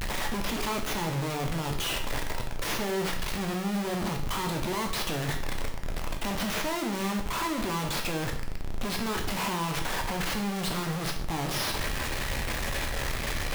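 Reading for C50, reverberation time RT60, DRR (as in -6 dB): 7.5 dB, 0.55 s, 2.5 dB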